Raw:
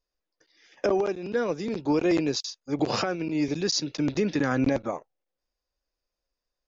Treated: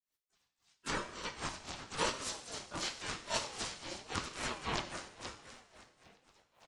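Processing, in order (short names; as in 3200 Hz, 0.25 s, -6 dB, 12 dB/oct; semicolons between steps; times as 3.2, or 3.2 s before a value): bin magnitudes rounded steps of 30 dB; HPF 190 Hz 12 dB/oct; spectral gate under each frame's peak -10 dB weak; tone controls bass -4 dB, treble +4 dB; frequency-shifting echo 0.491 s, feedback 50%, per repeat -55 Hz, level -12.5 dB; grains 0.258 s, grains 3.7/s, pitch spread up and down by 0 st; harmoniser -5 st -2 dB, +5 st -2 dB, +7 st -12 dB; two-slope reverb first 0.82 s, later 2.6 s, DRR 6.5 dB; ring modulator with a swept carrier 610 Hz, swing 30%, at 0.91 Hz; gain +4.5 dB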